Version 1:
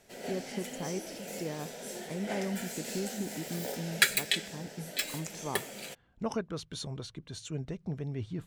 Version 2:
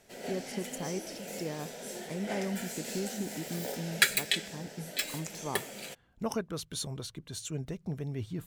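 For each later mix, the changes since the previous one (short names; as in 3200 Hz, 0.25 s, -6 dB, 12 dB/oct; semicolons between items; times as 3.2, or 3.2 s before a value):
speech: remove air absorption 69 m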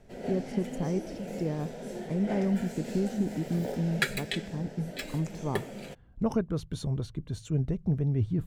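master: add tilt -3.5 dB/oct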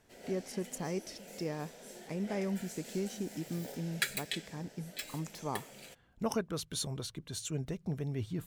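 background -9.0 dB; master: add tilt +3.5 dB/oct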